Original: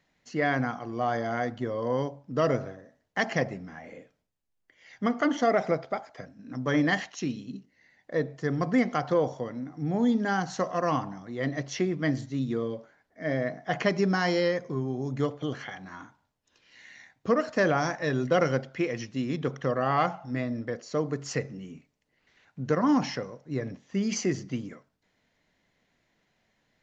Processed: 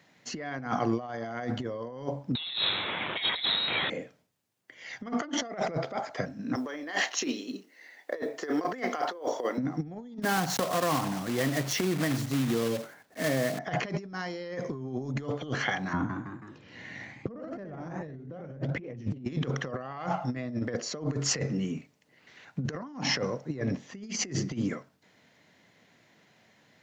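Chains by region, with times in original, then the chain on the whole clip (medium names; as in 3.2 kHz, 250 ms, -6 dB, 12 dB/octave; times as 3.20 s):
2.35–3.90 s: zero-crossing glitches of -20.5 dBFS + hum notches 50/100/150/200/250 Hz + frequency inversion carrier 4 kHz
6.55–9.58 s: high-pass 320 Hz 24 dB/octave + doubling 32 ms -13.5 dB + companded quantiser 8-bit
10.22–13.59 s: block-companded coder 3-bit + compression 2.5:1, threshold -38 dBFS
15.93–19.25 s: tilt EQ -4.5 dB/octave + ever faster or slower copies 162 ms, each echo +1 st, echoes 3, each echo -6 dB
whole clip: high-pass 98 Hz 24 dB/octave; peak limiter -21.5 dBFS; compressor with a negative ratio -36 dBFS, ratio -0.5; trim +5.5 dB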